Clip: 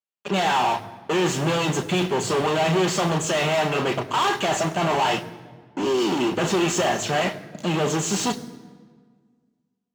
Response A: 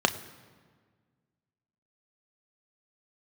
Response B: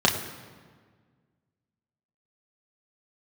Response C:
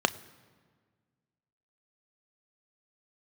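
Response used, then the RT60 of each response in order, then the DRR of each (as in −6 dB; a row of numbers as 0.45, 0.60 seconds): A; 1.6, 1.6, 1.6 seconds; 7.5, −1.5, 12.0 decibels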